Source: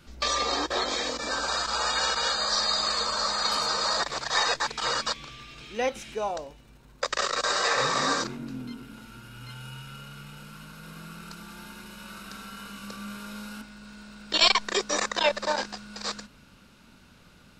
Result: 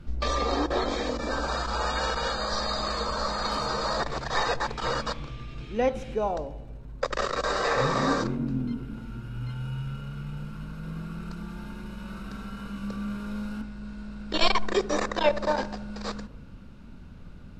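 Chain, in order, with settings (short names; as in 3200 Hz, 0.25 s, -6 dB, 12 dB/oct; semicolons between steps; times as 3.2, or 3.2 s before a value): tilt -3.5 dB/oct; on a send: darkening echo 75 ms, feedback 73%, low-pass 1100 Hz, level -16 dB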